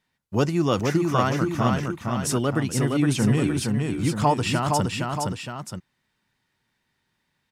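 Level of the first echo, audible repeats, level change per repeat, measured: −3.5 dB, 2, −5.5 dB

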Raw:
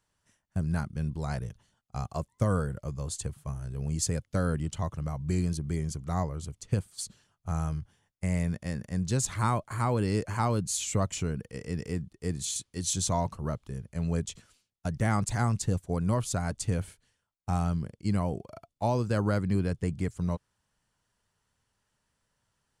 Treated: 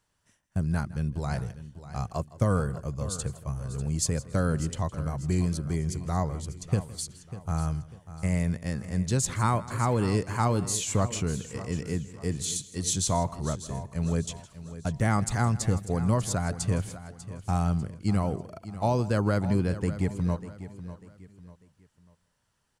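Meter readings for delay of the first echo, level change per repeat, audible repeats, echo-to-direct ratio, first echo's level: 162 ms, repeats not evenly spaced, 5, −12.5 dB, −19.0 dB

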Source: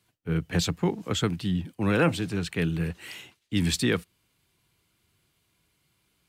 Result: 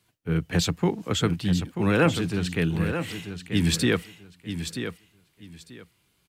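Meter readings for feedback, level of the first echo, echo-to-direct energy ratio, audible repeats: 21%, −9.0 dB, −9.0 dB, 2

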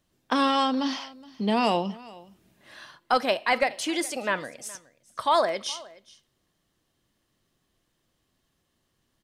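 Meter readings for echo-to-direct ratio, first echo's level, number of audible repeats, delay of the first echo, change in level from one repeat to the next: −21.5 dB, −21.5 dB, 1, 419 ms, repeats not evenly spaced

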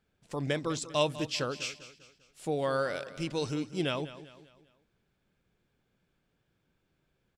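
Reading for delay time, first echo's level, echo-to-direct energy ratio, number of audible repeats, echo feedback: 198 ms, −15.0 dB, −14.0 dB, 3, 43%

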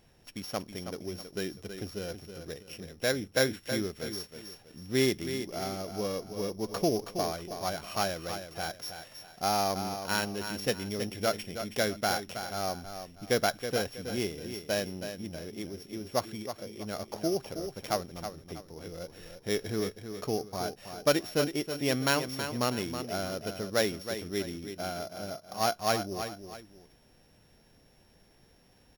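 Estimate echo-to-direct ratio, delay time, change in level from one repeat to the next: −8.5 dB, 322 ms, −9.5 dB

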